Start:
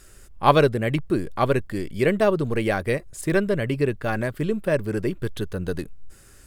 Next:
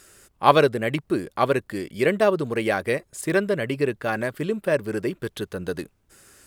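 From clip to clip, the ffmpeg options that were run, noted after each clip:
-af "highpass=f=270:p=1,volume=1.5dB"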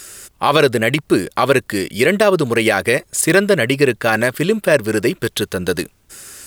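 -af "highshelf=f=2k:g=8.5,alimiter=level_in=10dB:limit=-1dB:release=50:level=0:latency=1,volume=-1dB"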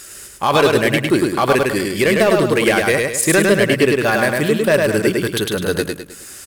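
-filter_complex "[0:a]asoftclip=type=hard:threshold=-6.5dB,asplit=2[a][b];[b]aecho=0:1:104|208|312|416|520:0.708|0.283|0.113|0.0453|0.0181[c];[a][c]amix=inputs=2:normalize=0,volume=-1dB"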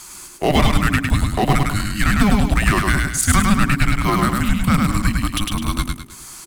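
-af "afreqshift=-410,volume=-1dB"

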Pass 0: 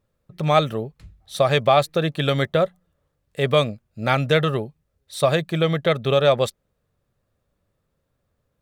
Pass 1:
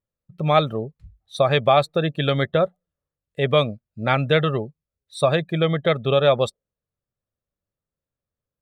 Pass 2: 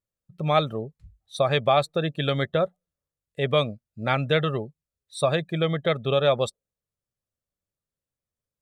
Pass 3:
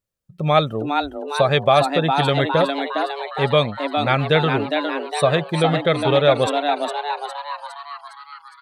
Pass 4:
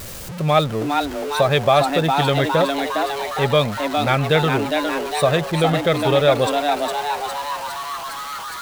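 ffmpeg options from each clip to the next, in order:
-af "afftdn=nr=17:nf=-34"
-af "equalizer=f=8.1k:w=0.79:g=5,volume=-4dB"
-filter_complex "[0:a]asplit=9[a][b][c][d][e][f][g][h][i];[b]adelay=409,afreqshift=140,volume=-5.5dB[j];[c]adelay=818,afreqshift=280,volume=-10.4dB[k];[d]adelay=1227,afreqshift=420,volume=-15.3dB[l];[e]adelay=1636,afreqshift=560,volume=-20.1dB[m];[f]adelay=2045,afreqshift=700,volume=-25dB[n];[g]adelay=2454,afreqshift=840,volume=-29.9dB[o];[h]adelay=2863,afreqshift=980,volume=-34.8dB[p];[i]adelay=3272,afreqshift=1120,volume=-39.7dB[q];[a][j][k][l][m][n][o][p][q]amix=inputs=9:normalize=0,volume=5dB"
-af "aeval=exprs='val(0)+0.5*0.0562*sgn(val(0))':c=same,volume=-1dB"

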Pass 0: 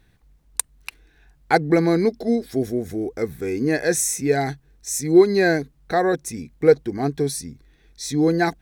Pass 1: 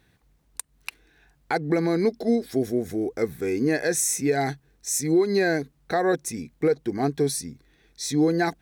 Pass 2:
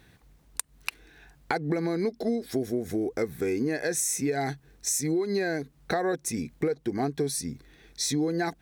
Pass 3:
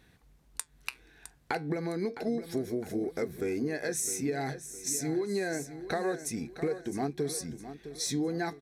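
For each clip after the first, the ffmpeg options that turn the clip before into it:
-af "highpass=f=120:p=1,alimiter=limit=-13dB:level=0:latency=1:release=155"
-af "acompressor=threshold=-32dB:ratio=4,volume=5.5dB"
-filter_complex "[0:a]flanger=delay=4.2:depth=6.4:regen=-77:speed=0.29:shape=sinusoidal,asplit=2[a][b];[b]aecho=0:1:660|1320|1980|2640:0.251|0.098|0.0382|0.0149[c];[a][c]amix=inputs=2:normalize=0,aresample=32000,aresample=44100"

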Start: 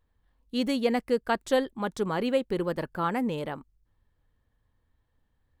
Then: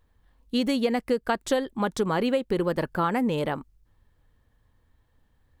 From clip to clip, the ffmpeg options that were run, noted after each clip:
-af "acompressor=threshold=-28dB:ratio=5,volume=7dB"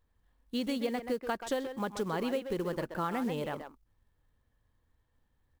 -filter_complex "[0:a]asplit=2[a][b];[b]adelay=130,highpass=300,lowpass=3.4k,asoftclip=type=hard:threshold=-20dB,volume=-7dB[c];[a][c]amix=inputs=2:normalize=0,acrusher=bits=6:mode=log:mix=0:aa=0.000001,volume=-8.5dB"

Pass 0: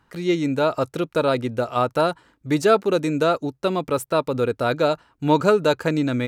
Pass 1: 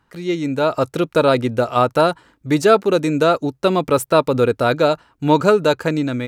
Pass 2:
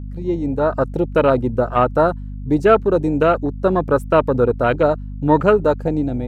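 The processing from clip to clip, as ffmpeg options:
-af "dynaudnorm=f=280:g=5:m=11.5dB,volume=-1dB"
-af "afwtdn=0.0794,aeval=exprs='val(0)+0.0398*(sin(2*PI*50*n/s)+sin(2*PI*2*50*n/s)/2+sin(2*PI*3*50*n/s)/3+sin(2*PI*4*50*n/s)/4+sin(2*PI*5*50*n/s)/5)':c=same"

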